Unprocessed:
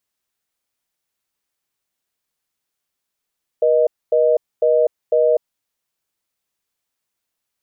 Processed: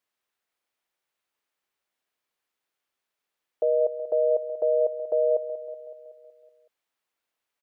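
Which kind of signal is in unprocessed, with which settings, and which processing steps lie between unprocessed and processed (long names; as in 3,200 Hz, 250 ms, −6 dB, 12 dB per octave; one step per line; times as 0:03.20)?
call progress tone reorder tone, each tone −14.5 dBFS 1.92 s
bass and treble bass −11 dB, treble −9 dB
brickwall limiter −16 dBFS
on a send: repeating echo 187 ms, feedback 59%, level −12 dB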